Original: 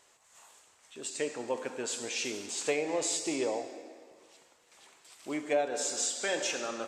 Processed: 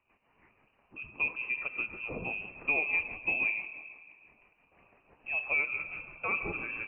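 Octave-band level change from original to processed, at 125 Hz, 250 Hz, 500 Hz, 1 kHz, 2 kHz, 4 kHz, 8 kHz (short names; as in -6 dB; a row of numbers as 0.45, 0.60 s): +4.0 dB, -9.5 dB, -12.5 dB, -4.0 dB, +9.5 dB, under -15 dB, under -40 dB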